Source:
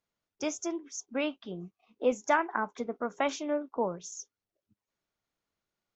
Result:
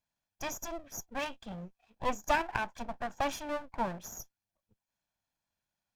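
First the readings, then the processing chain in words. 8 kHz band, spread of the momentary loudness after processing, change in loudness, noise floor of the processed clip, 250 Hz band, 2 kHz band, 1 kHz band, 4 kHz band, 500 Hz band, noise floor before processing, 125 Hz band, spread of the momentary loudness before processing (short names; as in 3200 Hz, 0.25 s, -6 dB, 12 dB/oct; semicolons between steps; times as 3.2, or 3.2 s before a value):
n/a, 15 LU, -3.5 dB, under -85 dBFS, -7.0 dB, -1.5 dB, -1.0 dB, -0.5 dB, -6.5 dB, under -85 dBFS, +2.5 dB, 15 LU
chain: minimum comb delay 1.2 ms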